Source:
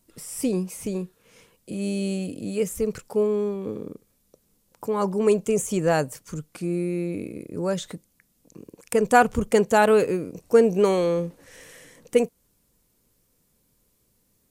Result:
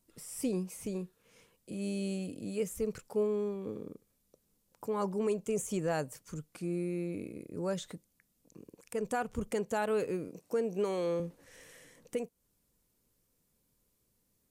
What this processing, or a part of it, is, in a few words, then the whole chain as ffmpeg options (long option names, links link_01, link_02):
stacked limiters: -filter_complex "[0:a]asettb=1/sr,asplit=3[link_01][link_02][link_03];[link_01]atrim=end=10.284[link_04];[link_02]atrim=start=10.28:end=11.2,asetpts=PTS-STARTPTS,afade=type=in:duration=0.004:curve=qsin,afade=type=out:start_time=0.916:duration=0.004:curve=qsin,highpass=160[link_05];[link_03]atrim=start=11.196[link_06];[link_04][link_05]acrossfade=duration=0.004:curve1=hsin:curve2=qsin[link_07];[link_07][link_06]acrossfade=duration=0.004:curve1=qsin:curve2=hsin,alimiter=limit=-10dB:level=0:latency=1:release=410,alimiter=limit=-14.5dB:level=0:latency=1:release=271,volume=-8.5dB"